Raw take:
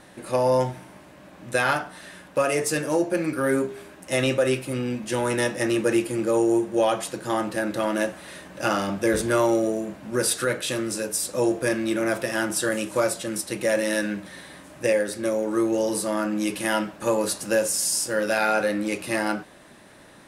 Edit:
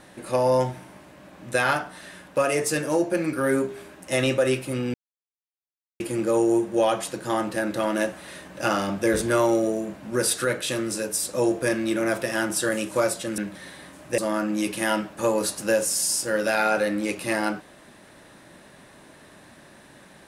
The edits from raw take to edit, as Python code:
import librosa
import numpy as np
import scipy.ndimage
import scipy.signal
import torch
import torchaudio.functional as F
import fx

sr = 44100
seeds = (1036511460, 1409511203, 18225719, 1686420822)

y = fx.edit(x, sr, fx.silence(start_s=4.94, length_s=1.06),
    fx.cut(start_s=13.38, length_s=0.71),
    fx.cut(start_s=14.89, length_s=1.12), tone=tone)